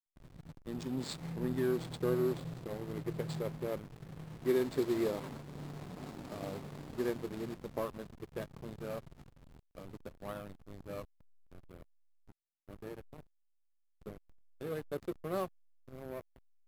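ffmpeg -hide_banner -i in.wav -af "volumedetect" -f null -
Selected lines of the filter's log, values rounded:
mean_volume: -39.7 dB
max_volume: -20.3 dB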